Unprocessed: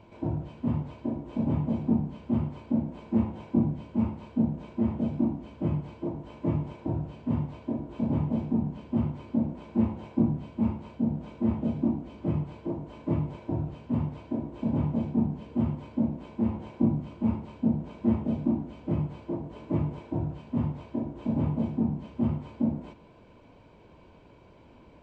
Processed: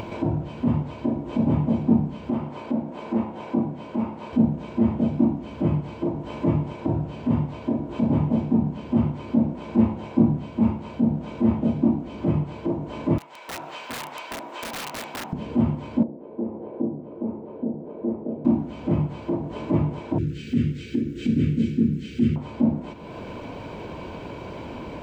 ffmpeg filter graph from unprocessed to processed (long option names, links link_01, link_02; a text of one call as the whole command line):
ffmpeg -i in.wav -filter_complex "[0:a]asettb=1/sr,asplit=3[link_01][link_02][link_03];[link_01]atrim=end=2.304[link_04];[link_02]atrim=start=2.3:end=4.33,asetpts=PTS-STARTPTS,afade=type=in:duration=0.004:curve=qsin,afade=type=out:start_time=2.026:duration=0.004:curve=qsin,highpass=frequency=670:poles=1,tiltshelf=frequency=1400:gain=4[link_05];[link_03]atrim=start=4.326[link_06];[link_04][link_05]acrossfade=duration=0.004:curve1=hsin:curve2=qsin[link_07];[link_07][link_06]acrossfade=duration=0.004:curve1=qsin:curve2=hsin,asettb=1/sr,asplit=3[link_08][link_09][link_10];[link_08]atrim=end=13.184[link_11];[link_09]atrim=start=13.18:end=15.33,asetpts=PTS-STARTPTS,afade=type=in:duration=0.004:curve=qsin,afade=type=out:start_time=2.146:duration=0.004:curve=qsin,highpass=1100,aeval=exprs='(mod(150*val(0)+1,2)-1)/150':channel_layout=same[link_12];[link_10]atrim=start=15.326[link_13];[link_11][link_12]acrossfade=duration=0.004:curve1=hsin:curve2=qsin[link_14];[link_14][link_13]acrossfade=duration=0.004:curve1=qsin:curve2=hsin,asettb=1/sr,asplit=3[link_15][link_16][link_17];[link_15]atrim=end=16.034[link_18];[link_16]atrim=start=16.03:end=18.45,asetpts=PTS-STARTPTS,afade=type=in:duration=0.004:curve=qsin,afade=type=out:start_time=2.416:duration=0.004:curve=qsin,bandpass=frequency=440:width_type=q:width=2.3,aemphasis=mode=reproduction:type=75kf[link_19];[link_17]atrim=start=18.446[link_20];[link_18][link_19]acrossfade=duration=0.004:curve1=hsin:curve2=qsin[link_21];[link_21][link_20]acrossfade=duration=0.004:curve1=qsin:curve2=hsin,asettb=1/sr,asplit=3[link_22][link_23][link_24];[link_22]atrim=end=20.184[link_25];[link_23]atrim=start=20.18:end=22.36,asetpts=PTS-STARTPTS,afade=type=in:duration=0.004:curve=qsin,afade=type=out:start_time=2.176:duration=0.004:curve=qsin,asuperstop=centerf=830:order=8:qfactor=0.75,highshelf=frequency=2300:gain=11.5[link_26];[link_24]atrim=start=22.356[link_27];[link_25][link_26]acrossfade=duration=0.004:curve1=hsin:curve2=qsin[link_28];[link_28][link_27]acrossfade=duration=0.004:curve1=qsin:curve2=hsin,lowshelf=frequency=65:gain=-9,acompressor=mode=upward:threshold=-30dB:ratio=2.5,volume=7dB" out.wav